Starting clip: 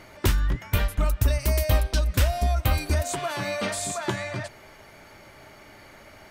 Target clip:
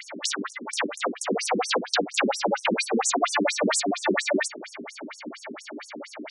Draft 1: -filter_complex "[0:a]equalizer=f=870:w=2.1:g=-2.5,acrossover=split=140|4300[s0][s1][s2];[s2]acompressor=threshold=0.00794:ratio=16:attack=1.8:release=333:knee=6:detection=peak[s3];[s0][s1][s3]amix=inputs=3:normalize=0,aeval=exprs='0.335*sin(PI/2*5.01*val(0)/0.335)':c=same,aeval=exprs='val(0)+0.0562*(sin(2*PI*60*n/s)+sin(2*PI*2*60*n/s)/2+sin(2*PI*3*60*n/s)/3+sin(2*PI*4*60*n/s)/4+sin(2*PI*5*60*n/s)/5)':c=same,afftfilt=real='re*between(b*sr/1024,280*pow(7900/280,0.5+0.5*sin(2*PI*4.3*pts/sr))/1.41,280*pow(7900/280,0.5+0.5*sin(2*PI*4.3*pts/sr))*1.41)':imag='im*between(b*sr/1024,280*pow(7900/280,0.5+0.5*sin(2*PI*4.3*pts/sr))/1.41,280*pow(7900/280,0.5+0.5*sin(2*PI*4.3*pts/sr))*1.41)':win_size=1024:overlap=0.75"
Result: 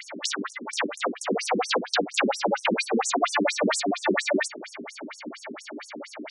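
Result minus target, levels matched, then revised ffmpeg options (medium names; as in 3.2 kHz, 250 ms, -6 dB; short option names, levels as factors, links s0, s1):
compression: peak gain reduction +6 dB
-filter_complex "[0:a]equalizer=f=870:w=2.1:g=-2.5,acrossover=split=140|4300[s0][s1][s2];[s2]acompressor=threshold=0.0168:ratio=16:attack=1.8:release=333:knee=6:detection=peak[s3];[s0][s1][s3]amix=inputs=3:normalize=0,aeval=exprs='0.335*sin(PI/2*5.01*val(0)/0.335)':c=same,aeval=exprs='val(0)+0.0562*(sin(2*PI*60*n/s)+sin(2*PI*2*60*n/s)/2+sin(2*PI*3*60*n/s)/3+sin(2*PI*4*60*n/s)/4+sin(2*PI*5*60*n/s)/5)':c=same,afftfilt=real='re*between(b*sr/1024,280*pow(7900/280,0.5+0.5*sin(2*PI*4.3*pts/sr))/1.41,280*pow(7900/280,0.5+0.5*sin(2*PI*4.3*pts/sr))*1.41)':imag='im*between(b*sr/1024,280*pow(7900/280,0.5+0.5*sin(2*PI*4.3*pts/sr))/1.41,280*pow(7900/280,0.5+0.5*sin(2*PI*4.3*pts/sr))*1.41)':win_size=1024:overlap=0.75"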